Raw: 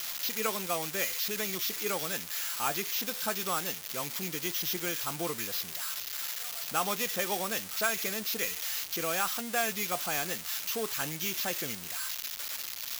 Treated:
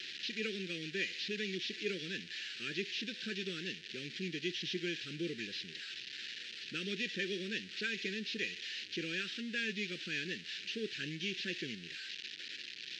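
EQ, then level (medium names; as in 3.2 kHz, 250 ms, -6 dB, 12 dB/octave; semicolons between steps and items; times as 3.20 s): Chebyshev band-stop 440–1800 Hz, order 3; dynamic bell 780 Hz, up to -8 dB, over -55 dBFS, Q 0.9; cabinet simulation 230–3500 Hz, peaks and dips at 270 Hz -4 dB, 470 Hz -7 dB, 730 Hz -7 dB, 1.1 kHz -7 dB, 2.1 kHz -9 dB, 3.3 kHz -3 dB; +5.5 dB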